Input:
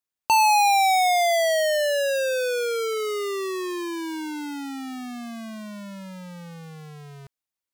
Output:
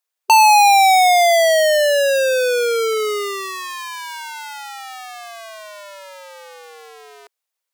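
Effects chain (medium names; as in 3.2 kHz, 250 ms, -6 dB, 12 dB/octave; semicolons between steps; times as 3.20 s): brick-wall FIR high-pass 400 Hz; trim +7.5 dB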